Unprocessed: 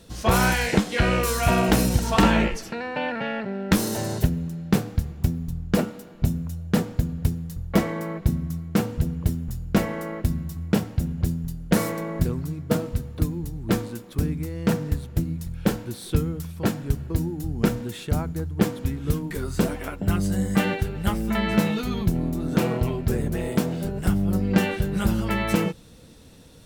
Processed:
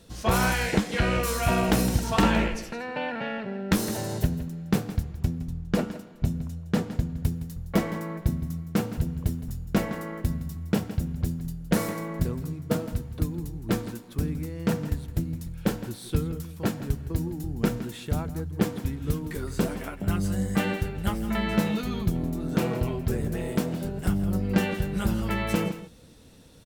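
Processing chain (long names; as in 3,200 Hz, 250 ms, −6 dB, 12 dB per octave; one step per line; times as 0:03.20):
0:05.03–0:07.16: high-shelf EQ 11,000 Hz −10.5 dB
single-tap delay 164 ms −13.5 dB
level −3.5 dB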